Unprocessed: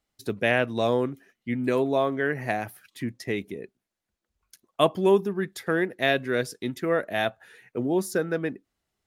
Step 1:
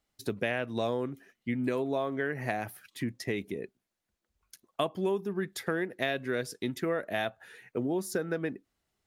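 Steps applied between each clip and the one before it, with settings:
downward compressor 4 to 1, threshold −28 dBFS, peak gain reduction 12 dB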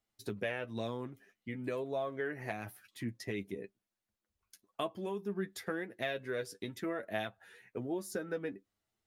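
flanger 1 Hz, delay 8.8 ms, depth 1.7 ms, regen +27%
level −2.5 dB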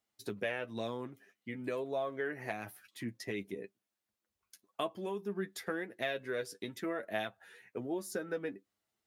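high-pass filter 180 Hz 6 dB per octave
level +1 dB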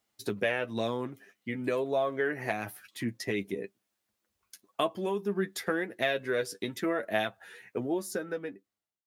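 fade-out on the ending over 1.27 s
level +7 dB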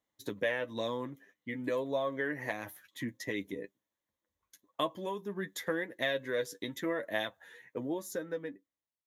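EQ curve with evenly spaced ripples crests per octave 1.1, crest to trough 8 dB
one half of a high-frequency compander decoder only
level −4.5 dB

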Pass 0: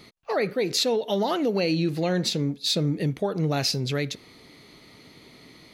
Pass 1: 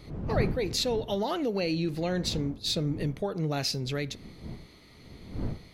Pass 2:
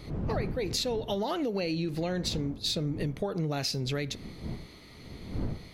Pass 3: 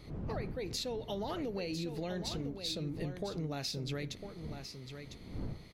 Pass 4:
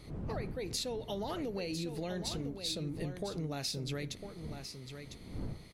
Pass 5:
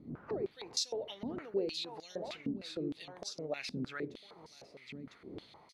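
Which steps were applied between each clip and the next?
wind on the microphone 190 Hz −33 dBFS; level −5 dB
downward compressor, threshold −31 dBFS, peak gain reduction 10.5 dB; level +3.5 dB
single-tap delay 1,002 ms −8.5 dB; level −7.5 dB
parametric band 9,400 Hz +8.5 dB 0.67 octaves
band-pass on a step sequencer 6.5 Hz 240–5,500 Hz; level +10.5 dB

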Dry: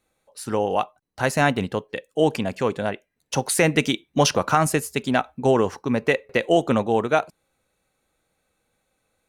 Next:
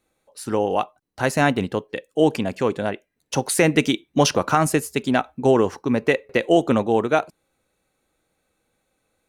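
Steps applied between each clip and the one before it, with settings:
parametric band 320 Hz +4 dB 0.84 octaves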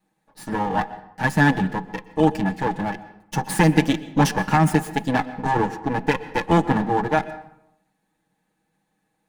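lower of the sound and its delayed copy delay 6.4 ms
hollow resonant body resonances 200/850/1,700 Hz, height 16 dB, ringing for 40 ms
convolution reverb RT60 0.80 s, pre-delay 113 ms, DRR 15.5 dB
level −4.5 dB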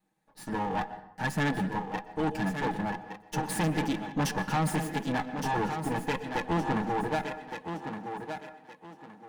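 soft clipping −18 dBFS, distortion −9 dB
feedback echo with a high-pass in the loop 1,166 ms, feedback 29%, high-pass 150 Hz, level −7 dB
level −5.5 dB

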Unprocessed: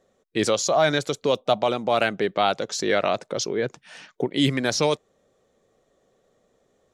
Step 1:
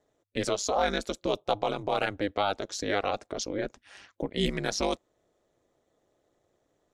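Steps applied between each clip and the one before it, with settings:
ring modulation 100 Hz
level −4 dB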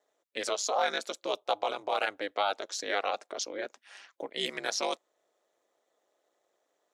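high-pass filter 560 Hz 12 dB per octave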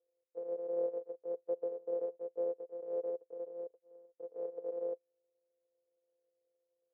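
samples sorted by size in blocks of 256 samples
flat-topped band-pass 490 Hz, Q 4.2
level +4 dB

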